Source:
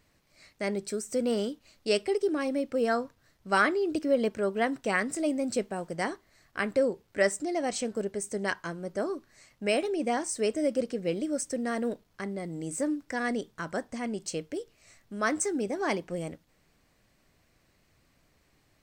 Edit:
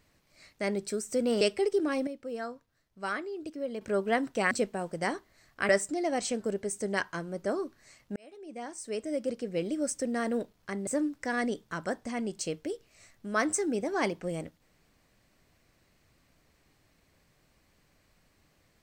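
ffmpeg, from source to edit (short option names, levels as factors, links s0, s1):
-filter_complex "[0:a]asplit=8[s0][s1][s2][s3][s4][s5][s6][s7];[s0]atrim=end=1.412[s8];[s1]atrim=start=1.898:end=2.562[s9];[s2]atrim=start=2.558:end=4.302,asetpts=PTS-STARTPTS,volume=0.316[s10];[s3]atrim=start=4.298:end=5.002[s11];[s4]atrim=start=5.478:end=6.662[s12];[s5]atrim=start=7.198:end=9.67,asetpts=PTS-STARTPTS,afade=t=out:st=2.468:d=0.004:c=hsin[s13];[s6]atrim=start=9.67:end=12.382,asetpts=PTS-STARTPTS,afade=t=in:d=1.73[s14];[s7]atrim=start=12.738[s15];[s8][s9]acrossfade=d=0.004:c1=hsin:c2=hsin[s16];[s16][s10]acrossfade=d=0.004:c1=hsin:c2=hsin[s17];[s17][s11]acrossfade=d=0.004:c1=hsin:c2=hsin[s18];[s18][s12]acrossfade=d=0.004:c1=hsin:c2=hsin[s19];[s13][s14]concat=n=2:v=0:a=1[s20];[s19][s20]acrossfade=d=0.004:c1=hsin:c2=hsin[s21];[s21][s15]acrossfade=d=0.004:c1=hsin:c2=hsin"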